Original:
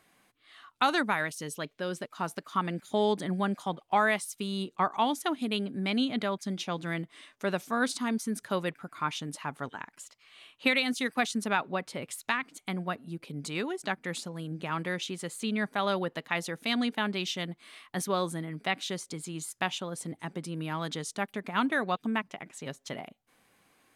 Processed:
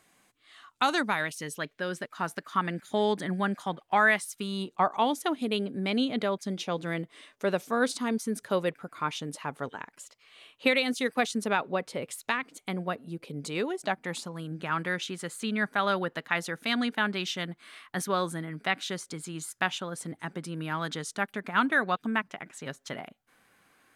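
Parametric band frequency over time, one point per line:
parametric band +7 dB 0.63 octaves
0:00.94 7,300 Hz
0:01.49 1,700 Hz
0:04.30 1,700 Hz
0:05.02 480 Hz
0:13.64 480 Hz
0:14.53 1,500 Hz

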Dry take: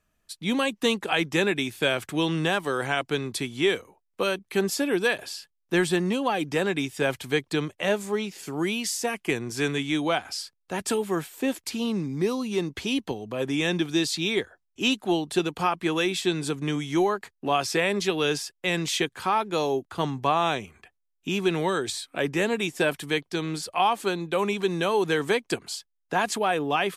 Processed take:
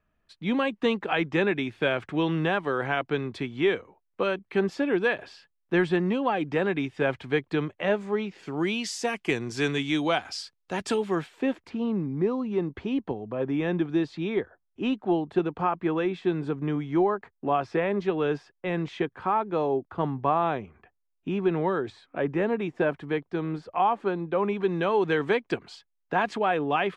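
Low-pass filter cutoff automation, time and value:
0:08.32 2,300 Hz
0:08.97 5,800 Hz
0:10.75 5,800 Hz
0:11.29 3,500 Hz
0:11.73 1,400 Hz
0:24.35 1,400 Hz
0:25.01 2,500 Hz

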